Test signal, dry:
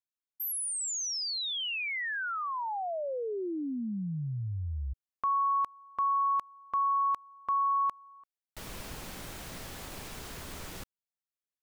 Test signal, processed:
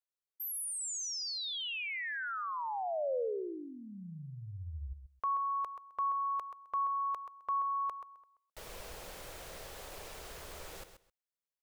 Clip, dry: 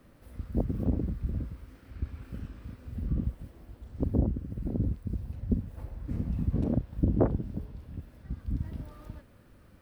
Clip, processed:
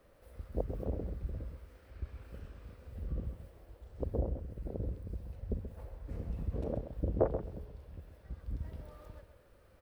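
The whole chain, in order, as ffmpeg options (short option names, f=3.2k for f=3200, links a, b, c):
-filter_complex "[0:a]equalizer=f=125:t=o:w=1:g=-5,equalizer=f=250:t=o:w=1:g=-10,equalizer=f=500:t=o:w=1:g=8,asplit=2[a][b];[b]aecho=0:1:131|262:0.316|0.0538[c];[a][c]amix=inputs=2:normalize=0,volume=-5dB"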